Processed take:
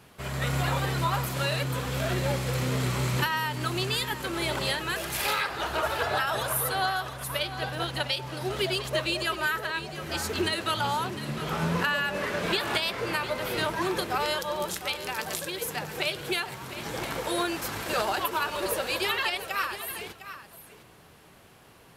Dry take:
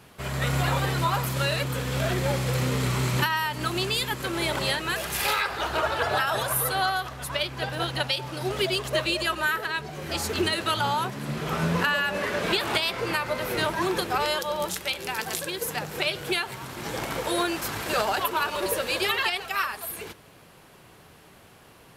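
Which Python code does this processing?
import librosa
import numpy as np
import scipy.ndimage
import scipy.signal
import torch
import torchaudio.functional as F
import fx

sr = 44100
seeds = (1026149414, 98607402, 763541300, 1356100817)

y = x + 10.0 ** (-12.5 / 20.0) * np.pad(x, (int(705 * sr / 1000.0), 0))[:len(x)]
y = F.gain(torch.from_numpy(y), -2.5).numpy()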